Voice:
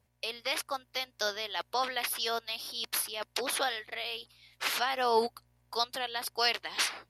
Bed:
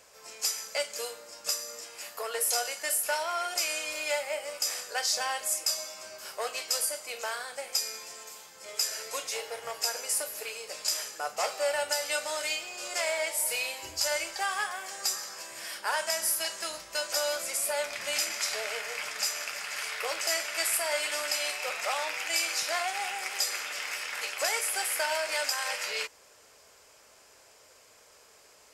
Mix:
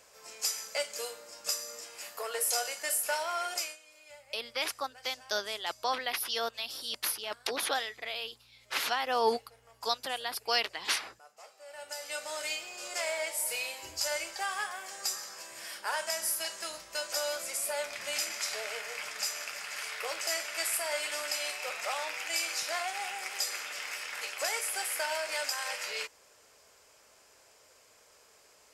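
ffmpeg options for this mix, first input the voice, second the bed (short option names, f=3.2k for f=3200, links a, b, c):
-filter_complex "[0:a]adelay=4100,volume=-0.5dB[a];[1:a]volume=17dB,afade=t=out:st=3.53:d=0.24:silence=0.0944061,afade=t=in:st=11.66:d=0.8:silence=0.112202[b];[a][b]amix=inputs=2:normalize=0"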